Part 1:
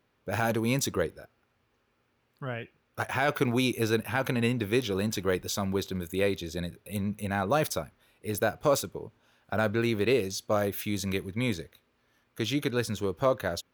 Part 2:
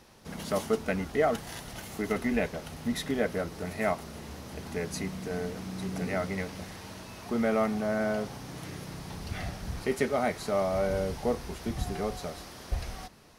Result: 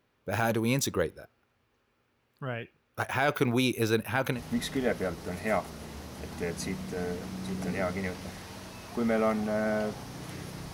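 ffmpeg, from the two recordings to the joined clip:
-filter_complex "[0:a]apad=whole_dur=10.73,atrim=end=10.73,atrim=end=4.41,asetpts=PTS-STARTPTS[s0];[1:a]atrim=start=2.65:end=9.07,asetpts=PTS-STARTPTS[s1];[s0][s1]acrossfade=d=0.1:c1=tri:c2=tri"

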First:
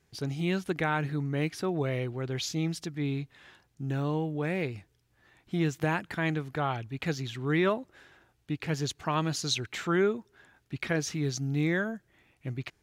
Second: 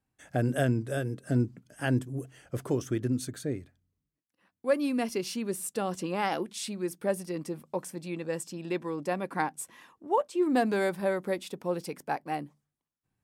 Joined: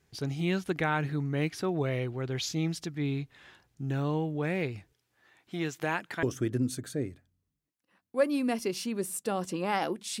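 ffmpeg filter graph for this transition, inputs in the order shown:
-filter_complex "[0:a]asettb=1/sr,asplit=3[s0][s1][s2];[s0]atrim=end=4.934[s3];[s1]atrim=start=4.93:end=6.23,asetpts=PTS-STARTPTS,afade=t=in:d=0.004:c=qsin,afade=t=out:st=1.296:d=0.004:c=qsin,highpass=f=390:p=1[s4];[s2]atrim=start=6.226[s5];[s3][s4]acrossfade=d=0.004:c1=hsin:c2=qsin[s6];[s6][s5]acrossfade=d=0.004:c1=qsin:c2=hsin,apad=whole_dur=10.2,atrim=end=10.2,atrim=end=6.232[s7];[1:a]atrim=start=2.728:end=6.7[s8];[s7][s8]acrossfade=d=0.004:c1=hsin:c2=hsin"

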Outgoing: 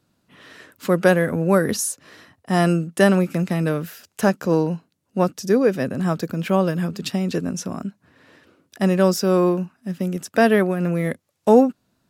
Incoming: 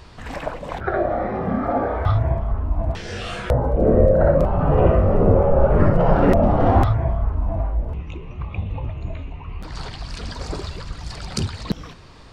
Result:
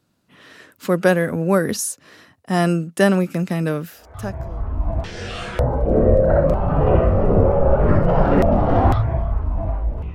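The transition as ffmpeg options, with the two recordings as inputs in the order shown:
-filter_complex "[0:a]apad=whole_dur=10.14,atrim=end=10.14,atrim=end=4.78,asetpts=PTS-STARTPTS[s0];[1:a]atrim=start=1.71:end=8.05,asetpts=PTS-STARTPTS[s1];[s0][s1]acrossfade=d=0.98:c1=qua:c2=qua"

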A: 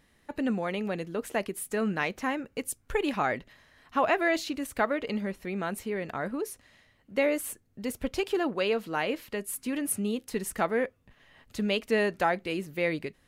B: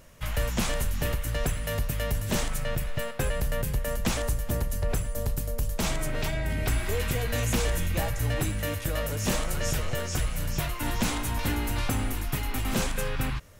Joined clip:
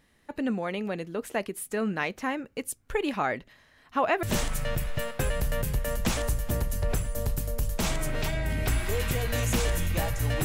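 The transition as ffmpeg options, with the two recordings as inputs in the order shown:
-filter_complex "[0:a]apad=whole_dur=10.44,atrim=end=10.44,atrim=end=4.232[s0];[1:a]atrim=start=2.228:end=8.44[s1];[s0][s1]acrossfade=d=0.004:c1=hsin:c2=hsin"

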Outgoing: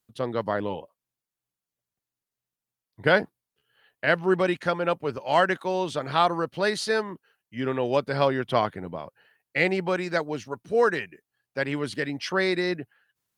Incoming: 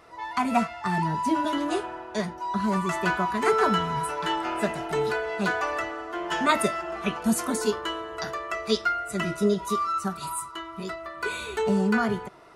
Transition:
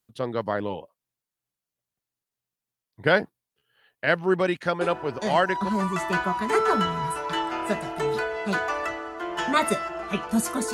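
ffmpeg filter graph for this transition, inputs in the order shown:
-filter_complex "[0:a]apad=whole_dur=10.73,atrim=end=10.73,atrim=end=5.69,asetpts=PTS-STARTPTS[s0];[1:a]atrim=start=1.74:end=7.66,asetpts=PTS-STARTPTS[s1];[s0][s1]acrossfade=d=0.88:c1=log:c2=log"

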